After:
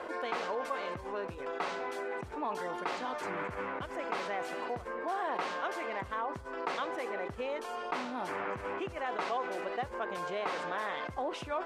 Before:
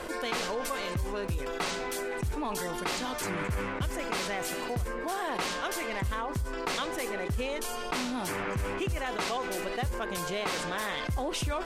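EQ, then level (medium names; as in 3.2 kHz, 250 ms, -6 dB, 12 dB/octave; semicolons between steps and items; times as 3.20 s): band-pass filter 830 Hz, Q 0.73; 0.0 dB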